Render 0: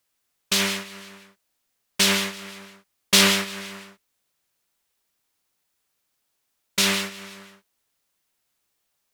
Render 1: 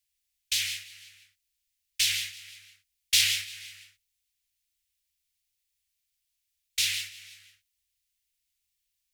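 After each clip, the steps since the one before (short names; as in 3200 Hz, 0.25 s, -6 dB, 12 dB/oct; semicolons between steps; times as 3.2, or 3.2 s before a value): inverse Chebyshev band-stop 220–820 Hz, stop band 60 dB; low shelf 220 Hz +7 dB; gain -5 dB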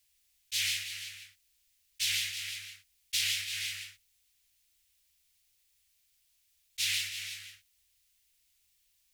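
auto swell 0.188 s; compressor 16:1, threshold -36 dBFS, peak gain reduction 13 dB; gain +8.5 dB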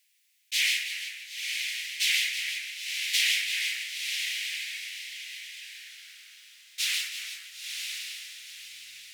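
diffused feedback echo 0.971 s, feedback 41%, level -4.5 dB; high-pass sweep 2000 Hz -> 240 Hz, 5.57–8.82; gain +2 dB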